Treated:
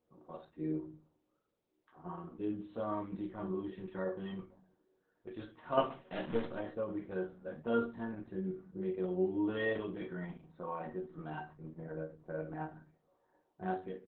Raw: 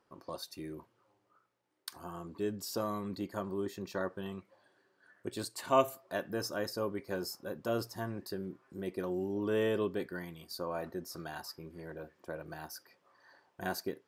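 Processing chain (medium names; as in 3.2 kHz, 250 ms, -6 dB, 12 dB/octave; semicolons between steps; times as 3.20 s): 5.90–6.46 s: square wave that keeps the level; 6.97–7.52 s: hum notches 60/120/180/240/300 Hz; level-controlled noise filter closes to 580 Hz, open at -31.5 dBFS; harmonic-percussive split percussive -10 dB; in parallel at +2 dB: level held to a coarse grid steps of 24 dB; on the sum: chord resonator D#3 minor, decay 0.23 s; on a send at -6.5 dB: reverberation RT60 0.30 s, pre-delay 4 ms; on the sum: resampled via 8 kHz; trim +12 dB; Opus 8 kbps 48 kHz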